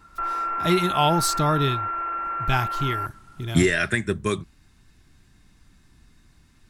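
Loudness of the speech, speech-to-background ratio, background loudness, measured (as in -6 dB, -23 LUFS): -24.0 LUFS, 3.0 dB, -27.0 LUFS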